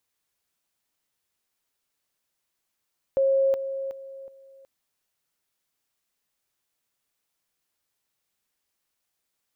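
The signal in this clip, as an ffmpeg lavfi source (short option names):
-f lavfi -i "aevalsrc='pow(10,(-18-10*floor(t/0.37))/20)*sin(2*PI*541*t)':d=1.48:s=44100"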